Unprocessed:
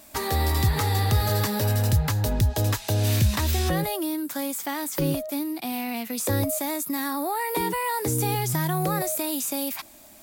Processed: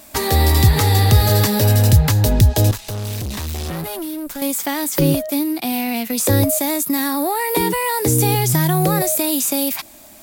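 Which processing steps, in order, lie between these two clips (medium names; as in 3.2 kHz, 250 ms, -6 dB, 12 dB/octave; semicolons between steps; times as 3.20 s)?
dynamic bell 1.2 kHz, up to -5 dB, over -42 dBFS, Q 1.1; 2.71–4.42 s: valve stage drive 32 dB, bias 0.75; in parallel at -6.5 dB: crossover distortion -40 dBFS; on the sum: trim +6.5 dB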